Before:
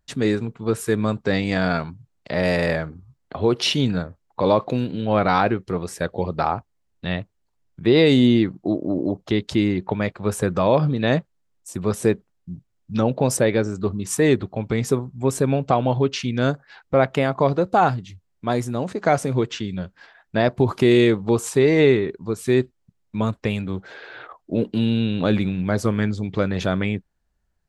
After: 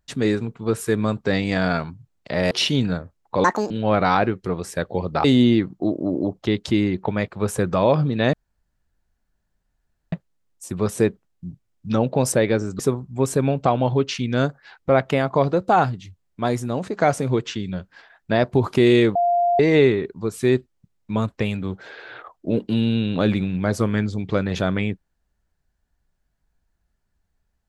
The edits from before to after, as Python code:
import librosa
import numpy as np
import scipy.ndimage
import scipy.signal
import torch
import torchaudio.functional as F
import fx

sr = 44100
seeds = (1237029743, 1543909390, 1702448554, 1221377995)

y = fx.edit(x, sr, fx.cut(start_s=2.51, length_s=1.05),
    fx.speed_span(start_s=4.49, length_s=0.45, speed=1.71),
    fx.cut(start_s=6.48, length_s=1.6),
    fx.insert_room_tone(at_s=11.17, length_s=1.79),
    fx.cut(start_s=13.84, length_s=1.0),
    fx.bleep(start_s=21.2, length_s=0.44, hz=698.0, db=-15.5), tone=tone)